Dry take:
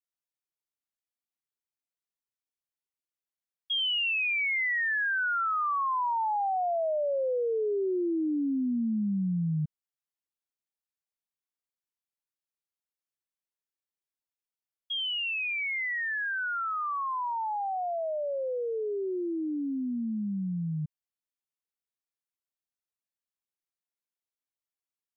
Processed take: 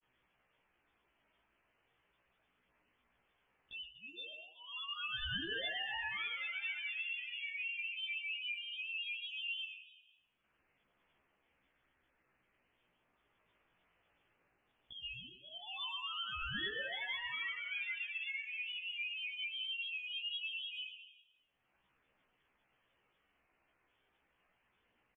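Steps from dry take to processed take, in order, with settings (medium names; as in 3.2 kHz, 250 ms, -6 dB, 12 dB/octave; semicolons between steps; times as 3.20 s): tracing distortion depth 0.43 ms; de-hum 48.75 Hz, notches 14; peak limiter -33 dBFS, peak gain reduction 10.5 dB; upward compressor, threshold -39 dBFS; frequency inversion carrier 3 kHz; granulator, spray 20 ms, pitch spread up and down by 3 st; feedback delay 121 ms, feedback 46%, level -12 dB; on a send at -23.5 dB: reverberation RT60 1.0 s, pre-delay 22 ms; on the sum: chorus voices 2, 0.18 Hz, delay 16 ms, depth 1.6 ms; trim -2 dB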